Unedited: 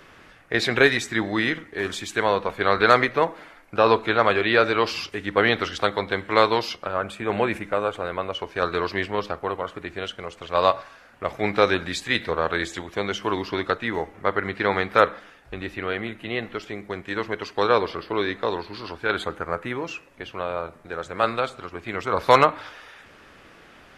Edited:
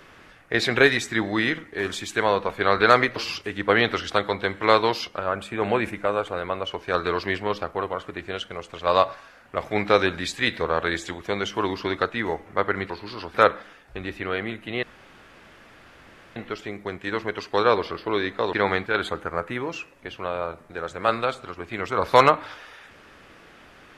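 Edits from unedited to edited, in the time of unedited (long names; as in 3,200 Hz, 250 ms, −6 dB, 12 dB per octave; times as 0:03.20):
0:03.16–0:04.84: remove
0:14.58–0:14.91: swap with 0:18.57–0:19.01
0:16.40: splice in room tone 1.53 s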